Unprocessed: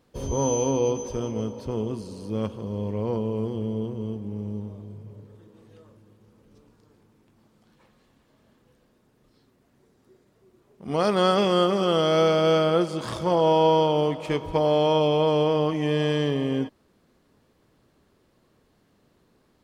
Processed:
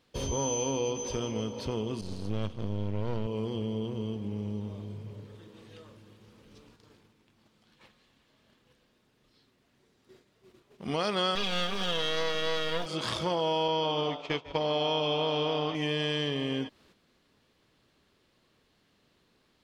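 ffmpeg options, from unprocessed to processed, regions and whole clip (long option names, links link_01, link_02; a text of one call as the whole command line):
ffmpeg -i in.wav -filter_complex "[0:a]asettb=1/sr,asplit=3[link_01][link_02][link_03];[link_01]atrim=end=2.014[link_04];[link_02]atrim=start=2.01:end=3.27,asetpts=PTS-STARTPTS,afade=type=in:duration=0.004:curve=qsin,afade=type=out:start_time=1.256:duration=0.004:curve=qsin,aeval=exprs='if(lt(val(0),0),0.251*val(0),val(0))':channel_layout=same,agate=range=-33dB:threshold=-39dB:ratio=3:release=100:detection=peak,lowshelf=frequency=180:gain=11.5[link_05];[link_03]atrim=start=3.266[link_06];[link_04][link_05]acrossfade=duration=0.004:curve1=hsin:curve2=qsin[link_07];[link_07][link_06]acrossfade=duration=0.004:curve1=qsin:curve2=hsin,asettb=1/sr,asplit=3[link_08][link_09][link_10];[link_08]atrim=end=11.354[link_11];[link_09]atrim=start=11.35:end=12.86,asetpts=PTS-STARTPTS,afade=type=in:duration=0.004:curve=qsin,afade=type=out:start_time=1.506:duration=0.004:curve=qsin,aeval=exprs='max(val(0),0)':channel_layout=same,aecho=1:1:4.2:0.63,atrim=end_sample=66591,acrusher=bits=6:dc=4:mix=0:aa=0.000001[link_12];[link_10]atrim=start=12.856[link_13];[link_11][link_12]acrossfade=duration=0.004:curve1=hsin:curve2=qsin[link_14];[link_14][link_13]acrossfade=duration=0.004:curve1=qsin:curve2=hsin,asettb=1/sr,asplit=3[link_15][link_16][link_17];[link_15]atrim=end=13.684[link_18];[link_16]atrim=start=13.68:end=15.75,asetpts=PTS-STARTPTS,afade=type=in:duration=0.004:curve=qsin,afade=type=out:start_time=2.066:duration=0.004:curve=qsin,lowpass=frequency=6500:width=0.5412,lowpass=frequency=6500:width=1.3066,asplit=5[link_19][link_20][link_21][link_22][link_23];[link_20]adelay=148,afreqshift=130,volume=-10.5dB[link_24];[link_21]adelay=296,afreqshift=260,volume=-18.2dB[link_25];[link_22]adelay=444,afreqshift=390,volume=-26dB[link_26];[link_23]adelay=592,afreqshift=520,volume=-33.7dB[link_27];[link_19][link_24][link_25][link_26][link_27]amix=inputs=5:normalize=0,atrim=end_sample=91287,agate=range=-33dB:threshold=-23dB:ratio=3:release=100:detection=peak[link_28];[link_17]atrim=start=15.746[link_29];[link_18][link_28]acrossfade=duration=0.004:curve1=hsin:curve2=qsin[link_30];[link_30][link_29]acrossfade=duration=0.004:curve1=qsin:curve2=hsin,agate=range=-7dB:threshold=-59dB:ratio=16:detection=peak,equalizer=frequency=3300:width_type=o:width=2.1:gain=11,acompressor=threshold=-31dB:ratio=2.5" out.wav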